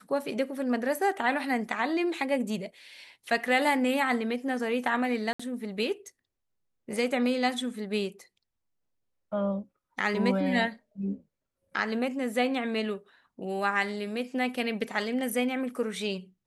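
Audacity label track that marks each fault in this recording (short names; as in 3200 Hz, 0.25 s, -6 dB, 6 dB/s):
5.330000	5.390000	gap 65 ms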